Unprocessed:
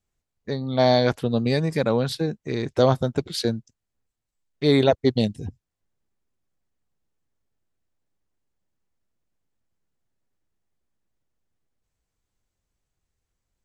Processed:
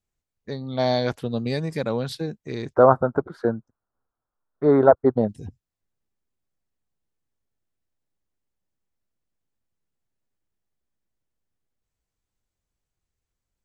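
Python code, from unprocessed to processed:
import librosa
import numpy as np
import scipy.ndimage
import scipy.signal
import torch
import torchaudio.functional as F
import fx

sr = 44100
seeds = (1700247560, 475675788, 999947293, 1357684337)

y = fx.curve_eq(x, sr, hz=(140.0, 1400.0, 2600.0), db=(0, 14, -24), at=(2.74, 5.29))
y = y * librosa.db_to_amplitude(-4.0)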